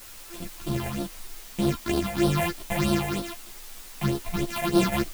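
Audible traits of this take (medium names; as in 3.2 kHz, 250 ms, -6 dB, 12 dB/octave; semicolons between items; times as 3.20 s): a buzz of ramps at a fixed pitch in blocks of 128 samples; phasing stages 6, 3.2 Hz, lowest notch 310–2100 Hz; a quantiser's noise floor 8-bit, dither triangular; a shimmering, thickened sound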